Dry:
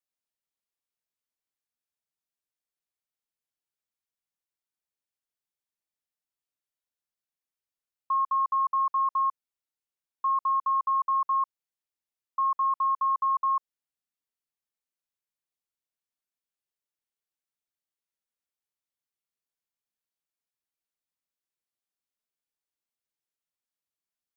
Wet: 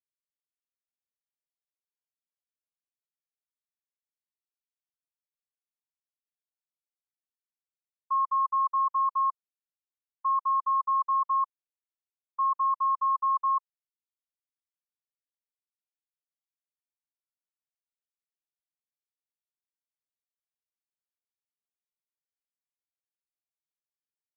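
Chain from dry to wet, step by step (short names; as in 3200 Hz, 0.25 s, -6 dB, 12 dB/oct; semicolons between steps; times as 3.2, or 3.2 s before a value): expander -26 dBFS; Butterworth band-pass 1100 Hz, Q 4.3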